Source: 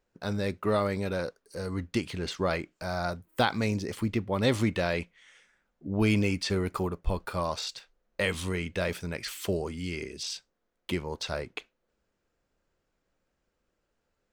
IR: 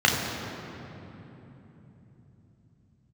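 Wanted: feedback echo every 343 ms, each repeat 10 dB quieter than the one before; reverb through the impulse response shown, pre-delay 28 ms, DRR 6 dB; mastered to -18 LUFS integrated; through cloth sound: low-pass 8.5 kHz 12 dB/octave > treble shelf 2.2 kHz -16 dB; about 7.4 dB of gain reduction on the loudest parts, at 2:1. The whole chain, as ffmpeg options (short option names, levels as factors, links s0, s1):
-filter_complex "[0:a]acompressor=threshold=0.02:ratio=2,aecho=1:1:343|686|1029|1372:0.316|0.101|0.0324|0.0104,asplit=2[s0][s1];[1:a]atrim=start_sample=2205,adelay=28[s2];[s1][s2]afir=irnorm=-1:irlink=0,volume=0.0562[s3];[s0][s3]amix=inputs=2:normalize=0,lowpass=8500,highshelf=f=2200:g=-16,volume=7.5"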